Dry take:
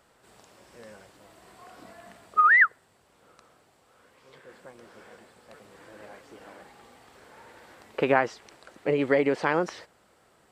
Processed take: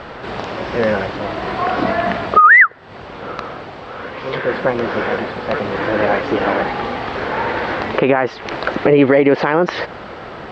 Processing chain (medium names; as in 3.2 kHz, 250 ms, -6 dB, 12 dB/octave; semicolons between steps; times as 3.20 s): Bessel low-pass 2.9 kHz, order 6; compression 20:1, threshold -36 dBFS, peak gain reduction 21.5 dB; loudness maximiser +32.5 dB; trim -1 dB